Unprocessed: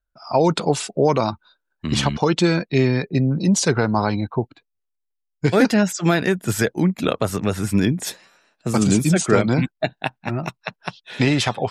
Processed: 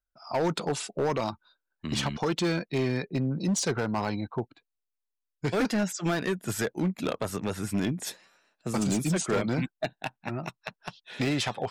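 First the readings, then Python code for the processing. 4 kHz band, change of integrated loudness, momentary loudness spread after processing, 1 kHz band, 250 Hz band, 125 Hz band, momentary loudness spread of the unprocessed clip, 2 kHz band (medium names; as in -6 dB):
-8.0 dB, -9.5 dB, 11 LU, -9.5 dB, -9.5 dB, -10.5 dB, 11 LU, -9.0 dB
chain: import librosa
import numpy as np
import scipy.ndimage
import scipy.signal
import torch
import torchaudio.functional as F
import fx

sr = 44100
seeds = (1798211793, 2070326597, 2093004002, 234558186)

y = fx.peak_eq(x, sr, hz=78.0, db=-4.0, octaves=2.0)
y = np.clip(y, -10.0 ** (-14.0 / 20.0), 10.0 ** (-14.0 / 20.0))
y = y * librosa.db_to_amplitude(-7.5)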